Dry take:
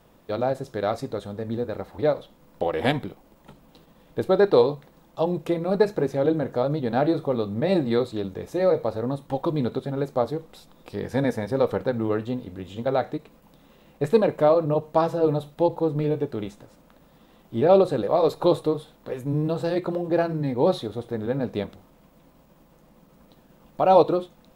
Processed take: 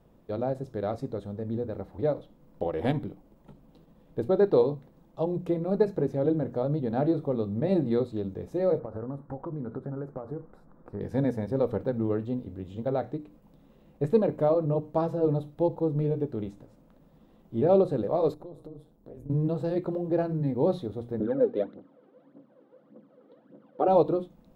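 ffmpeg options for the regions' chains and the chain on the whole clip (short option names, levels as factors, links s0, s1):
-filter_complex "[0:a]asettb=1/sr,asplit=3[s0][s1][s2];[s0]atrim=end=8.794[s3];[s1]atrim=start=8.79:end=11.01,asetpts=PTS-STARTPTS,afade=t=in:d=0.004:c=qsin,afade=t=out:st=2.216:d=0.004:c=qsin,highshelf=f=2100:t=q:w=3:g=-13,acompressor=threshold=0.0447:ratio=10:attack=3.2:release=140:knee=1:detection=peak[s4];[s2]atrim=start=11.006[s5];[s3][s4]acrossfade=d=0.004:c1=hsin:c2=qsin[s6];[s6][s5]acrossfade=d=0.004:c1=qsin:c2=hsin,asettb=1/sr,asplit=3[s7][s8][s9];[s7]atrim=end=18.344[s10];[s8]atrim=start=18.34:end=19.3,asetpts=PTS-STARTPTS,afade=t=in:d=0.004:c=qsin,afade=t=out:st=0.956:d=0.004:c=qsin,tremolo=f=170:d=0.824,equalizer=f=2400:w=0.49:g=-9.5,acompressor=threshold=0.0158:ratio=6:attack=3.2:release=140:knee=1:detection=peak[s11];[s9]atrim=start=19.296[s12];[s10][s11]acrossfade=d=0.004:c1=hsin:c2=qsin[s13];[s13][s12]acrossfade=d=0.004:c1=qsin:c2=hsin,asettb=1/sr,asplit=3[s14][s15][s16];[s14]atrim=end=21.204[s17];[s15]atrim=start=21.2:end=23.88,asetpts=PTS-STARTPTS,afade=t=in:d=0.004:c=qsin,afade=t=out:st=2.676:d=0.004:c=qsin,aphaser=in_gain=1:out_gain=1:delay=2.7:decay=0.69:speed=1.7:type=triangular,highpass=f=170:w=0.5412,highpass=f=170:w=1.3066,equalizer=f=170:t=q:w=4:g=-9,equalizer=f=290:t=q:w=4:g=7,equalizer=f=520:t=q:w=4:g=7,equalizer=f=910:t=q:w=4:g=-3,equalizer=f=1400:t=q:w=4:g=5,equalizer=f=2500:t=q:w=4:g=-7,lowpass=f=3600:w=0.5412,lowpass=f=3600:w=1.3066[s18];[s16]atrim=start=23.876[s19];[s17][s18]acrossfade=d=0.004:c1=hsin:c2=qsin[s20];[s20][s19]acrossfade=d=0.004:c1=qsin:c2=hsin,tiltshelf=f=720:g=7,bandreject=f=60:t=h:w=6,bandreject=f=120:t=h:w=6,bandreject=f=180:t=h:w=6,bandreject=f=240:t=h:w=6,bandreject=f=300:t=h:w=6,volume=0.447"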